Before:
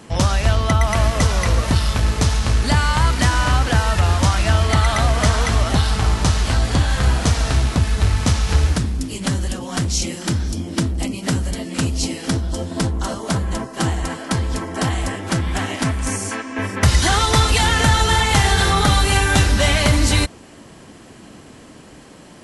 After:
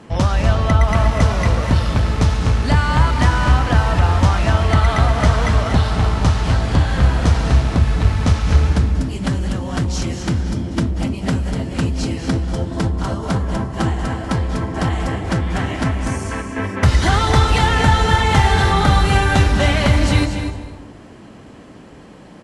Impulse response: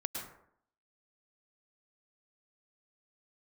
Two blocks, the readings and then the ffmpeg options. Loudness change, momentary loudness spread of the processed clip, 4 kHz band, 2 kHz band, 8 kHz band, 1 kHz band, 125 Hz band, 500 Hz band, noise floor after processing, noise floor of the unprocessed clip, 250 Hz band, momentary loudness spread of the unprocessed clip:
+1.0 dB, 8 LU, -3.5 dB, -0.5 dB, -8.0 dB, +1.5 dB, +2.5 dB, +1.5 dB, -40 dBFS, -42 dBFS, +2.5 dB, 8 LU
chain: -filter_complex "[0:a]lowpass=f=2.3k:p=1,aecho=1:1:243:0.282,asplit=2[a][b];[1:a]atrim=start_sample=2205,asetrate=24255,aresample=44100[c];[b][c]afir=irnorm=-1:irlink=0,volume=-8dB[d];[a][d]amix=inputs=2:normalize=0,volume=-2.5dB"

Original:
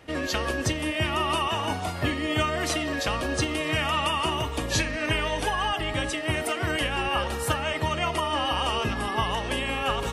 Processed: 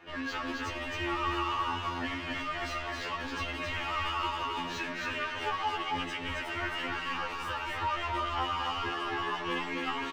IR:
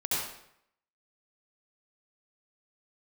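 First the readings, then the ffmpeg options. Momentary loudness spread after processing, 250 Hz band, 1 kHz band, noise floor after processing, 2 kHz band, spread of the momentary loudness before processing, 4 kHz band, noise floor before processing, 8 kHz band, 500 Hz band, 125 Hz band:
4 LU, -8.5 dB, -4.5 dB, -38 dBFS, -5.5 dB, 3 LU, -8.0 dB, -32 dBFS, -16.0 dB, -11.0 dB, -13.0 dB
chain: -filter_complex "[0:a]asplit=2[a][b];[b]highpass=f=720:p=1,volume=22dB,asoftclip=type=tanh:threshold=-11.5dB[c];[a][c]amix=inputs=2:normalize=0,lowpass=f=1.1k:p=1,volume=-6dB,equalizer=f=160:t=o:w=0.67:g=-8,equalizer=f=630:t=o:w=0.67:g=-9,equalizer=f=10k:t=o:w=0.67:g=-11,flanger=delay=5.9:depth=6:regen=37:speed=0.42:shape=triangular,asplit=2[d][e];[e]aecho=0:1:268:0.708[f];[d][f]amix=inputs=2:normalize=0,afftfilt=real='re*2*eq(mod(b,4),0)':imag='im*2*eq(mod(b,4),0)':win_size=2048:overlap=0.75,volume=-3.5dB"

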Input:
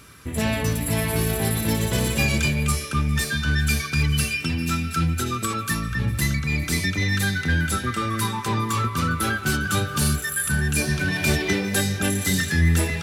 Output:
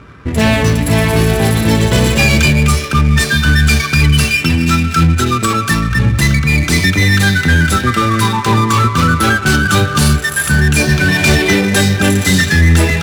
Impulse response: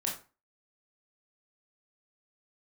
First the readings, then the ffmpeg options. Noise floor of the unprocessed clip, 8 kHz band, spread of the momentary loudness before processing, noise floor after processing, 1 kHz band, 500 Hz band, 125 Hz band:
-32 dBFS, +7.5 dB, 4 LU, -20 dBFS, +12.0 dB, +12.0 dB, +11.5 dB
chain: -af "apsyclip=16dB,adynamicsmooth=sensitivity=2:basefreq=1.1k,volume=-3.5dB"

